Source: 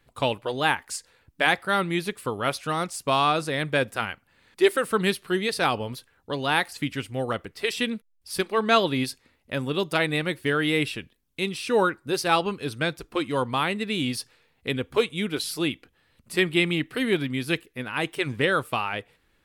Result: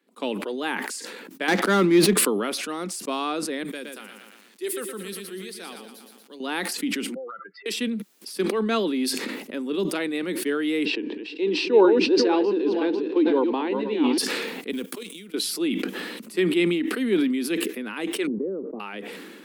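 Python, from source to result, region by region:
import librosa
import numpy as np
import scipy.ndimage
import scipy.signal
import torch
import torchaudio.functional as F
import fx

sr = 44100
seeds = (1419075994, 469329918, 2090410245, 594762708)

y = fx.chain(x, sr, fx.lowpass(hz=3600.0, slope=6),
    fx.leveller(passes=3), at=(1.48, 2.17))
y = fx.chain(y, sr, fx.pre_emphasis(coefficient=0.8),
    fx.echo_crushed(ms=117, feedback_pct=55, bits=9, wet_db=-7), at=(3.63, 6.4))
y = fx.chain(y, sr, fx.spec_expand(power=2.9),
    fx.ladder_bandpass(hz=1500.0, resonance_pct=75),
    fx.band_squash(depth_pct=100), at=(7.14, 7.66))
y = fx.chain(y, sr, fx.reverse_delay_fb(ms=248, feedback_pct=44, wet_db=-6.5),
    fx.cabinet(low_hz=260.0, low_slope=24, high_hz=4400.0, hz=(310.0, 450.0, 900.0, 1300.0, 2200.0, 3400.0), db=(9, 6, 8, -9, -4, -6)), at=(10.85, 14.18))
y = fx.chain(y, sr, fx.law_mismatch(coded='A'),
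    fx.pre_emphasis(coefficient=0.8),
    fx.level_steps(step_db=12), at=(14.71, 15.34))
y = fx.chain(y, sr, fx.ladder_lowpass(hz=590.0, resonance_pct=35),
    fx.band_squash(depth_pct=100), at=(18.27, 18.8))
y = scipy.signal.sosfilt(scipy.signal.butter(12, 190.0, 'highpass', fs=sr, output='sos'), y)
y = fx.low_shelf_res(y, sr, hz=500.0, db=6.5, q=1.5)
y = fx.sustainer(y, sr, db_per_s=29.0)
y = y * 10.0 ** (-6.5 / 20.0)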